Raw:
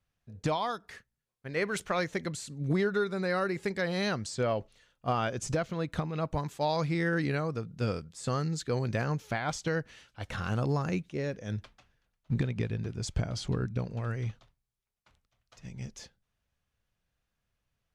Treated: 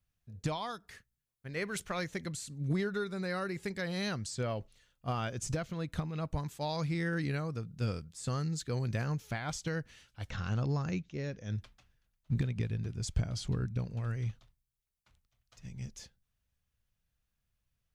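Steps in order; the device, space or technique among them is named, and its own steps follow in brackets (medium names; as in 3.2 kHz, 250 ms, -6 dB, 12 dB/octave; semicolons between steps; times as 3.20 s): 10.30–11.55 s: steep low-pass 6.9 kHz 48 dB/octave; smiley-face EQ (bass shelf 160 Hz +5.5 dB; peaking EQ 580 Hz -4.5 dB 2.9 oct; treble shelf 9.7 kHz +8 dB); trim -3.5 dB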